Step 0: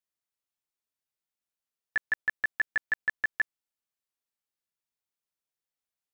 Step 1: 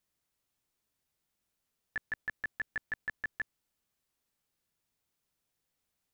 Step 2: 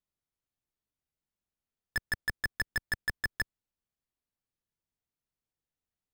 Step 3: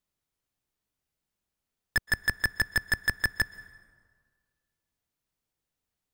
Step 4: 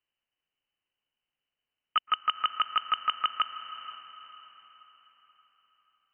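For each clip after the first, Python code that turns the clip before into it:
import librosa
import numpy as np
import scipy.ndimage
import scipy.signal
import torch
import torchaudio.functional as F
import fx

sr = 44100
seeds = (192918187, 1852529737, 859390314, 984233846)

y1 = fx.low_shelf(x, sr, hz=310.0, db=9.5)
y1 = fx.over_compress(y1, sr, threshold_db=-30.0, ratio=-0.5)
y1 = y1 * librosa.db_to_amplitude(-1.0)
y2 = fx.tilt_eq(y1, sr, slope=-1.5)
y2 = fx.leveller(y2, sr, passes=5)
y3 = fx.rev_plate(y2, sr, seeds[0], rt60_s=1.7, hf_ratio=0.6, predelay_ms=110, drr_db=18.5)
y3 = y3 * librosa.db_to_amplitude(6.0)
y4 = fx.freq_invert(y3, sr, carrier_hz=3000)
y4 = fx.echo_diffused(y4, sr, ms=487, feedback_pct=44, wet_db=-12)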